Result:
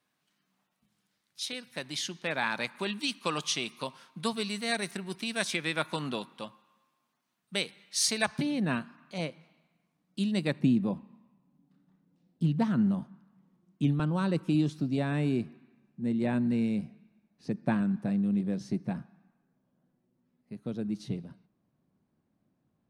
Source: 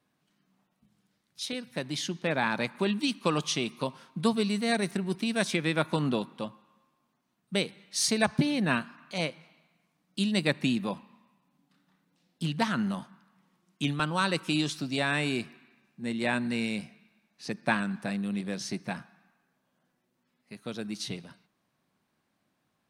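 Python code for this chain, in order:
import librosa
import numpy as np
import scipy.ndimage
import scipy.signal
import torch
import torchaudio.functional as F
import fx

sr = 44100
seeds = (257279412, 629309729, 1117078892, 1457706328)

y = fx.tilt_shelf(x, sr, db=fx.steps((0.0, -4.5), (8.41, 3.5), (10.59, 10.0)), hz=700.0)
y = F.gain(torch.from_numpy(y), -4.0).numpy()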